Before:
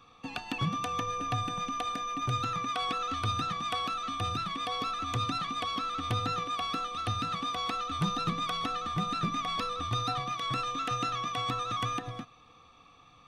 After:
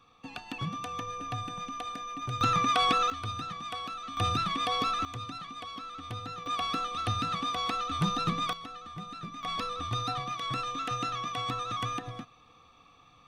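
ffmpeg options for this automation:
ffmpeg -i in.wav -af "asetnsamples=nb_out_samples=441:pad=0,asendcmd='2.41 volume volume 7dB;3.1 volume volume -5dB;4.17 volume volume 4dB;5.05 volume volume -8dB;6.46 volume volume 1.5dB;8.53 volume volume -10dB;9.43 volume volume -1dB',volume=-4dB" out.wav

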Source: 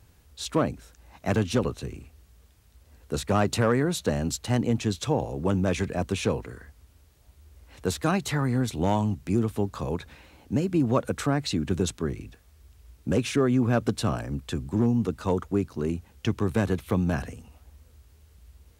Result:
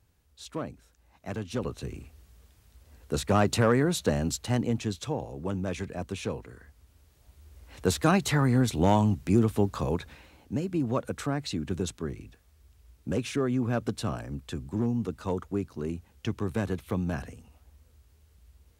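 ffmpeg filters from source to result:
ffmpeg -i in.wav -af "volume=9dB,afade=type=in:start_time=1.48:duration=0.5:silence=0.298538,afade=type=out:start_time=4.08:duration=1.11:silence=0.446684,afade=type=in:start_time=6.48:duration=1.42:silence=0.354813,afade=type=out:start_time=9.77:duration=0.76:silence=0.446684" out.wav

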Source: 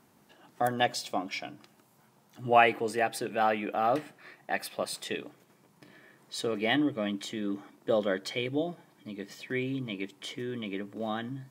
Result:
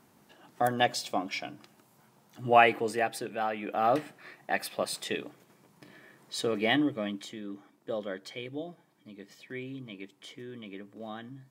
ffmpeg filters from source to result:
ffmpeg -i in.wav -af "volume=8.5dB,afade=type=out:start_time=2.78:duration=0.74:silence=0.446684,afade=type=in:start_time=3.52:duration=0.36:silence=0.421697,afade=type=out:start_time=6.65:duration=0.79:silence=0.354813" out.wav

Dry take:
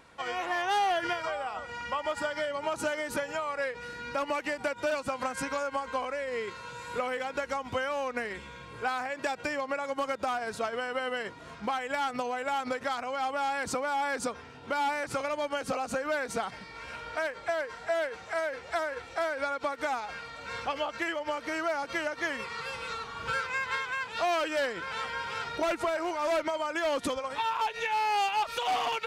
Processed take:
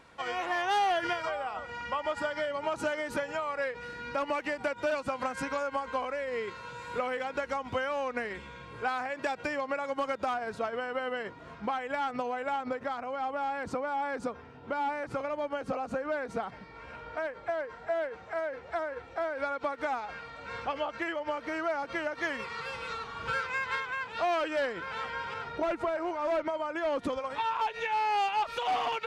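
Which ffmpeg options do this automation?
ffmpeg -i in.wav -af "asetnsamples=nb_out_samples=441:pad=0,asendcmd='1.29 lowpass f 3700;10.34 lowpass f 1900;12.56 lowpass f 1100;19.35 lowpass f 2100;22.15 lowpass f 4100;23.8 lowpass f 2400;25.34 lowpass f 1300;27.13 lowpass f 2800',lowpass=frequency=7100:poles=1" out.wav

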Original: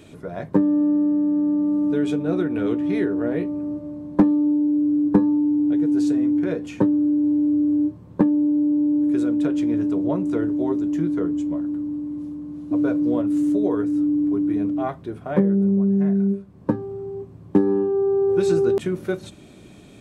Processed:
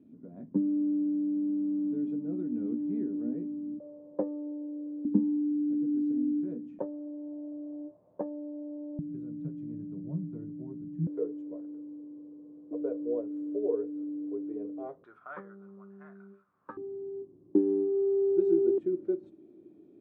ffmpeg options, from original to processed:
ffmpeg -i in.wav -af "asetnsamples=nb_out_samples=441:pad=0,asendcmd='3.8 bandpass f 530;5.05 bandpass f 240;6.79 bandpass f 630;8.99 bandpass f 160;11.07 bandpass f 460;15.04 bandpass f 1300;16.77 bandpass f 340',bandpass=frequency=240:width_type=q:width=6.9:csg=0" out.wav

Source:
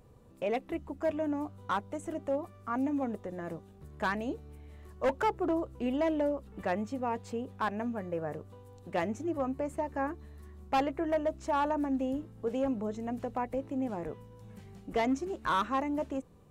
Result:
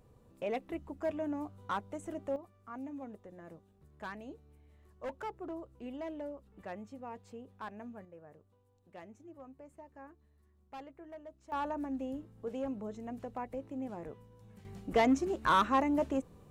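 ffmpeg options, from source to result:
ffmpeg -i in.wav -af "asetnsamples=nb_out_samples=441:pad=0,asendcmd='2.36 volume volume -12dB;8.05 volume volume -19dB;11.52 volume volume -6.5dB;14.65 volume volume 2.5dB',volume=-4dB" out.wav

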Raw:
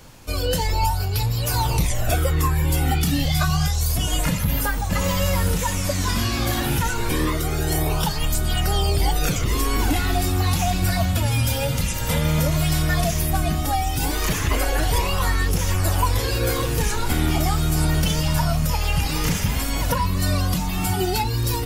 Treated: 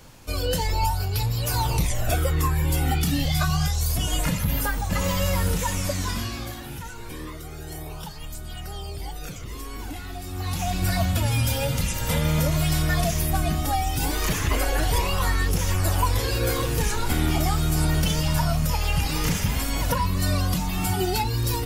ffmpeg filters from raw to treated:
ffmpeg -i in.wav -af "volume=9.5dB,afade=type=out:start_time=5.82:duration=0.76:silence=0.266073,afade=type=in:start_time=10.25:duration=0.7:silence=0.251189" out.wav

